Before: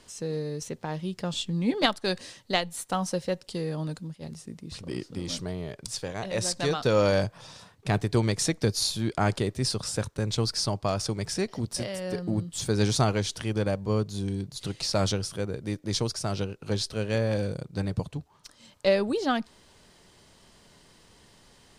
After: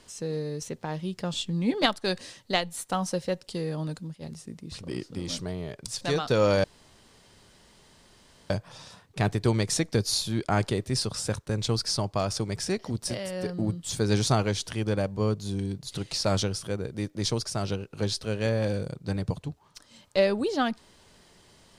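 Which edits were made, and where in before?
6.01–6.56 s: delete
7.19 s: insert room tone 1.86 s

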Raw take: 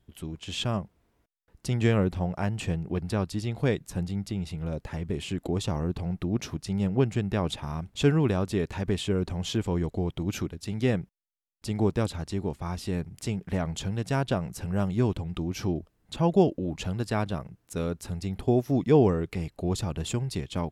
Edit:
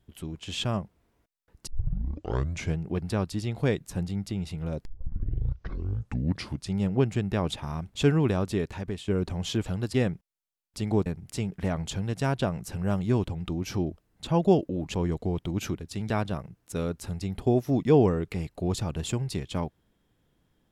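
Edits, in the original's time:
1.67 s: tape start 1.11 s
4.85 s: tape start 1.89 s
8.53–9.08 s: fade out, to -11 dB
9.66–10.82 s: swap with 16.83–17.11 s
11.94–12.95 s: delete

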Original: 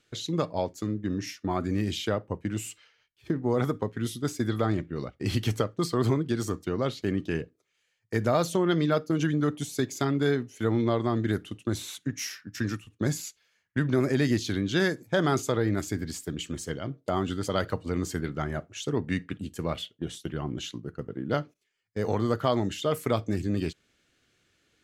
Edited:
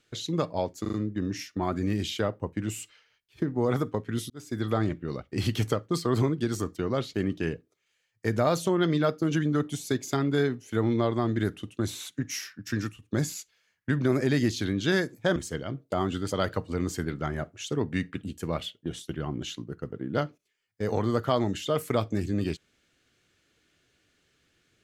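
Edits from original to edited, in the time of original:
0.81 s: stutter 0.04 s, 4 plays
4.18–4.57 s: fade in
15.24–16.52 s: delete

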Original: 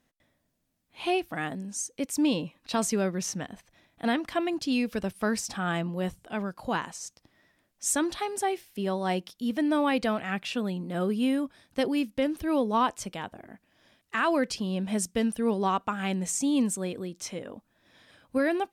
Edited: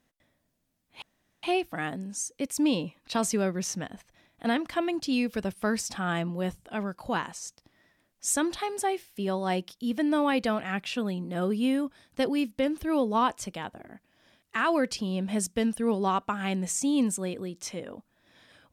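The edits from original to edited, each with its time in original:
1.02 s: insert room tone 0.41 s

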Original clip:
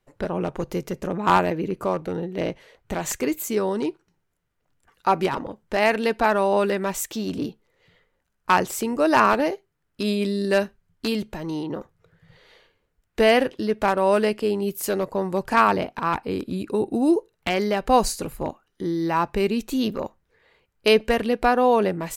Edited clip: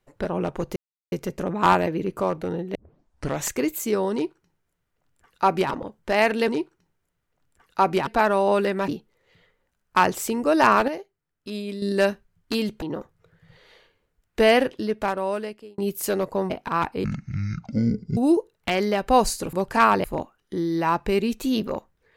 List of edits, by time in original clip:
0.76 s: insert silence 0.36 s
2.39 s: tape start 0.70 s
3.76–5.35 s: copy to 6.12 s
6.93–7.41 s: delete
9.41–10.35 s: gain -8 dB
11.35–11.62 s: delete
13.45–14.58 s: fade out
15.30–15.81 s: move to 18.32 s
16.35–16.96 s: speed 54%

